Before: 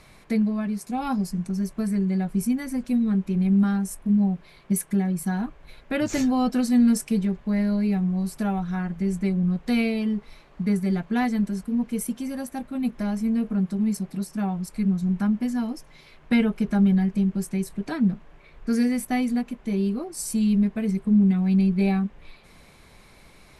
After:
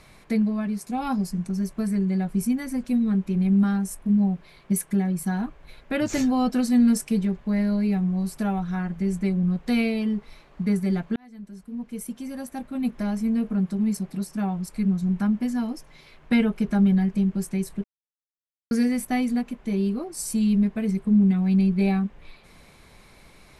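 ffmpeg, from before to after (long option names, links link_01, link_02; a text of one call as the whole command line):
ffmpeg -i in.wav -filter_complex "[0:a]asplit=4[link_01][link_02][link_03][link_04];[link_01]atrim=end=11.16,asetpts=PTS-STARTPTS,afade=type=out:start_time=11.156:duration=0.004:curve=hsin[link_05];[link_02]atrim=start=11.16:end=17.84,asetpts=PTS-STARTPTS,afade=type=in:duration=1.68,afade=type=out:start_time=6.676:duration=0.004:curve=hsin[link_06];[link_03]atrim=start=17.84:end=18.71,asetpts=PTS-STARTPTS,volume=0[link_07];[link_04]atrim=start=18.71,asetpts=PTS-STARTPTS,afade=type=in:duration=0.004:curve=hsin[link_08];[link_05][link_06][link_07][link_08]concat=n=4:v=0:a=1" out.wav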